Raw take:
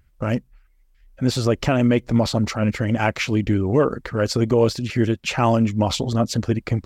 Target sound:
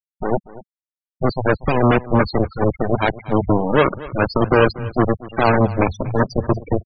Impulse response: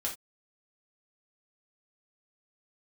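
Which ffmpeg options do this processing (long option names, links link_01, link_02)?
-filter_complex "[0:a]aeval=exprs='0.447*(cos(1*acos(clip(val(0)/0.447,-1,1)))-cos(1*PI/2))+0.178*(cos(7*acos(clip(val(0)/0.447,-1,1)))-cos(7*PI/2))':channel_layout=same,acrossover=split=200|2500[link_01][link_02][link_03];[link_02]acrusher=bits=3:mix=0:aa=0.5[link_04];[link_01][link_04][link_03]amix=inputs=3:normalize=0,afftfilt=real='re*gte(hypot(re,im),0.178)':imag='im*gte(hypot(re,im),0.178)':win_size=1024:overlap=0.75,aecho=1:1:238:0.119,volume=2dB"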